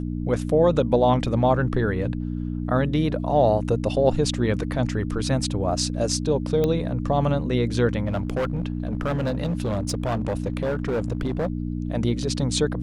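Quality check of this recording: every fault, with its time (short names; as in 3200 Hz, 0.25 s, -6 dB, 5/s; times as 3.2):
hum 60 Hz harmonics 5 -28 dBFS
6.64 pop -12 dBFS
8.05–11.5 clipped -20.5 dBFS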